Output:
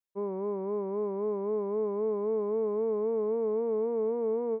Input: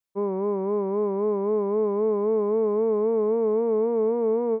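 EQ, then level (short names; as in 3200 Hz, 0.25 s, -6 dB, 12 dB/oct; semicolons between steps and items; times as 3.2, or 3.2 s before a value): bell 500 Hz +2 dB; -8.0 dB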